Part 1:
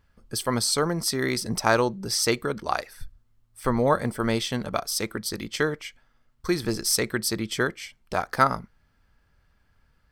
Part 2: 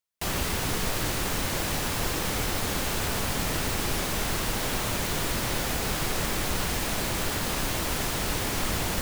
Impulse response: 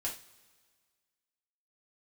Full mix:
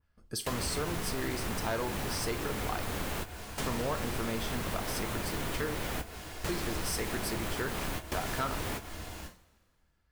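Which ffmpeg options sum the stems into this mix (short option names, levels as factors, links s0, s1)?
-filter_complex "[0:a]agate=range=0.501:threshold=0.00178:ratio=16:detection=peak,volume=0.473,asplit=3[s0][s1][s2];[s1]volume=0.501[s3];[1:a]highshelf=f=7200:g=-4,adelay=250,volume=0.841,asplit=2[s4][s5];[s5]volume=0.178[s6];[s2]apad=whole_len=408621[s7];[s4][s7]sidechaingate=range=0.0224:threshold=0.00141:ratio=16:detection=peak[s8];[2:a]atrim=start_sample=2205[s9];[s3][s6]amix=inputs=2:normalize=0[s10];[s10][s9]afir=irnorm=-1:irlink=0[s11];[s0][s8][s11]amix=inputs=3:normalize=0,adynamicequalizer=threshold=0.00708:dfrequency=5300:dqfactor=0.73:tfrequency=5300:tqfactor=0.73:attack=5:release=100:ratio=0.375:range=2.5:mode=cutabove:tftype=bell,volume=8.41,asoftclip=hard,volume=0.119,acompressor=threshold=0.0224:ratio=2.5"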